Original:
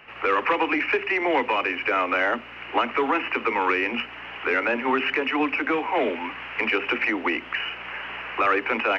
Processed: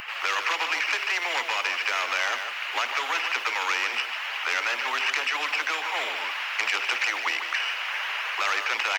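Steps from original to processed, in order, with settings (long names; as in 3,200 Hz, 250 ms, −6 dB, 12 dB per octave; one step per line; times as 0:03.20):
spectral magnitudes quantised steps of 15 dB
Bessel high-pass filter 1,300 Hz, order 4
high-shelf EQ 4,700 Hz +9.5 dB
single-tap delay 150 ms −13 dB
every bin compressed towards the loudest bin 2 to 1
level +1.5 dB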